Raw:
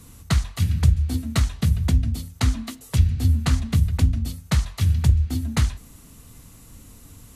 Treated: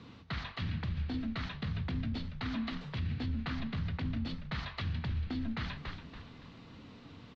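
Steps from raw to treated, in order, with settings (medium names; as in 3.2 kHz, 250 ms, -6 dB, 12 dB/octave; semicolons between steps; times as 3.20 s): high-pass 150 Hz 12 dB/octave; reverse; compression, threshold -26 dBFS, peak gain reduction 7.5 dB; reverse; dynamic bell 1.7 kHz, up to +4 dB, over -56 dBFS, Q 1.1; on a send: frequency-shifting echo 283 ms, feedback 36%, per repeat -78 Hz, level -12 dB; on the sum: peak limiter -27.5 dBFS, peak gain reduction 10.5 dB; steep low-pass 4.3 kHz 36 dB/octave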